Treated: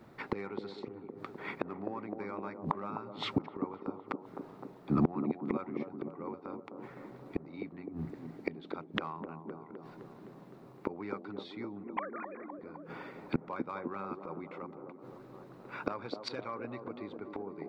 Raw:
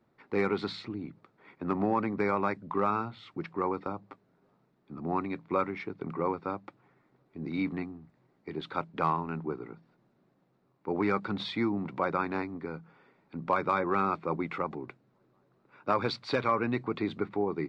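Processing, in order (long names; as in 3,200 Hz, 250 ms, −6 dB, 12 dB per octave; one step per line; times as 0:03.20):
0:11.84–0:12.59: three sine waves on the formant tracks
gate with flip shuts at −32 dBFS, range −28 dB
delay with a band-pass on its return 257 ms, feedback 68%, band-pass 410 Hz, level −4 dB
level +14.5 dB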